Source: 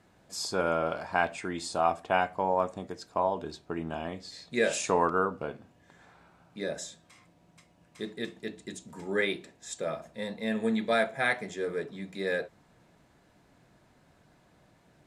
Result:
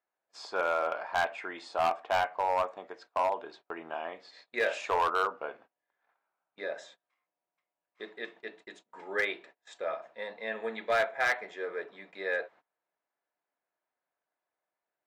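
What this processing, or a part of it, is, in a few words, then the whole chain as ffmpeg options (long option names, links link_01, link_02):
walkie-talkie: -af "highpass=600,lowpass=2400,asoftclip=type=hard:threshold=-23.5dB,agate=range=-24dB:threshold=-56dB:ratio=16:detection=peak,equalizer=frequency=200:width=1.4:gain=-3.5,volume=2.5dB"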